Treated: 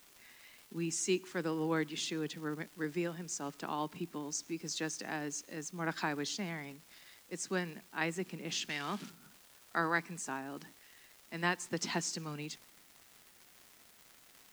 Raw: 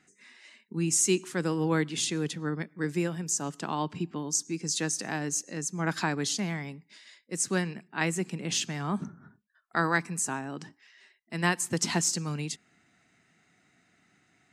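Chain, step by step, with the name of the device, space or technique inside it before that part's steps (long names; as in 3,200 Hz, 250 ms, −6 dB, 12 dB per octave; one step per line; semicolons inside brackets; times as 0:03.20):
78 rpm shellac record (band-pass filter 200–5,500 Hz; surface crackle 250 per second −40 dBFS; white noise bed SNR 24 dB)
0:08.69–0:09.10: meter weighting curve D
level −5.5 dB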